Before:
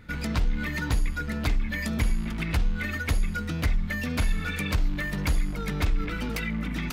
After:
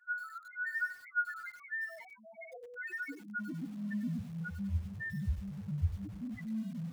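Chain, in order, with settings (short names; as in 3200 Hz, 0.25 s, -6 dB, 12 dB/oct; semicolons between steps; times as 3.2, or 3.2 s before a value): high-pass sweep 1300 Hz -> 85 Hz, 1.4–4.88; spring tank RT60 1.9 s, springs 50 ms, chirp 70 ms, DRR 14.5 dB; loudest bins only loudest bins 1; low shelf 77 Hz -6.5 dB; lo-fi delay 97 ms, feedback 35%, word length 8-bit, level -12 dB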